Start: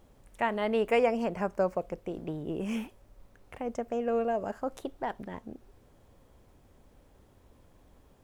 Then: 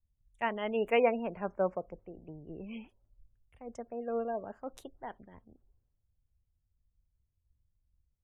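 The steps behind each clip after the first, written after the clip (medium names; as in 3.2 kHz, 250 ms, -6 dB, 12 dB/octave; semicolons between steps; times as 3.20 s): spectral gate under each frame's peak -30 dB strong; three bands expanded up and down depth 100%; trim -7 dB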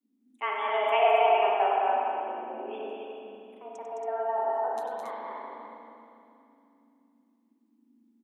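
frequency shift +210 Hz; loudspeakers at several distances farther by 33 m -11 dB, 73 m -5 dB, 95 m -5 dB; spring tank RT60 2.7 s, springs 39/58 ms, chirp 70 ms, DRR -2.5 dB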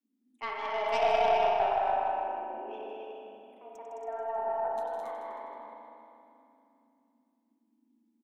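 tracing distortion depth 0.07 ms; on a send: feedback delay 158 ms, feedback 45%, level -9 dB; on the sum: trim -5.5 dB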